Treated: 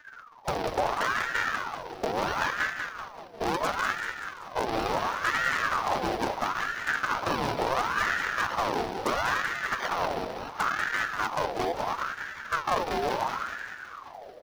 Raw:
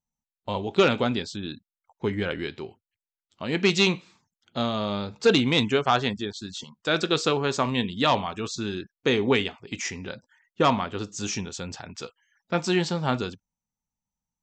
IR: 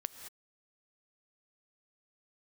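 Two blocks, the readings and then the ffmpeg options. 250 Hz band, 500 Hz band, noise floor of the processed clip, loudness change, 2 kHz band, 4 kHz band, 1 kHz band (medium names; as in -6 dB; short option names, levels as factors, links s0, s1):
-11.0 dB, -6.0 dB, -46 dBFS, -3.5 dB, +3.0 dB, -8.0 dB, +2.5 dB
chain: -filter_complex "[0:a]aeval=exprs='val(0)+0.5*0.0133*sgn(val(0))':c=same,afftdn=nr=22:nf=-33,highpass=43,lowshelf=f=110:g=8.5,acompressor=threshold=0.0316:ratio=8,aresample=11025,acrusher=samples=16:mix=1:aa=0.000001:lfo=1:lforange=16:lforate=1.6,aresample=44100,aeval=exprs='0.0473*(abs(mod(val(0)/0.0473+3,4)-2)-1)':c=same,acrusher=bits=6:mode=log:mix=0:aa=0.000001,asplit=2[s0][s1];[s1]aecho=0:1:192|384|576|768|960|1152|1344:0.501|0.286|0.163|0.0928|0.0529|0.0302|0.0172[s2];[s0][s2]amix=inputs=2:normalize=0,aeval=exprs='val(0)*sin(2*PI*1100*n/s+1100*0.5/0.73*sin(2*PI*0.73*n/s))':c=same,volume=2.51"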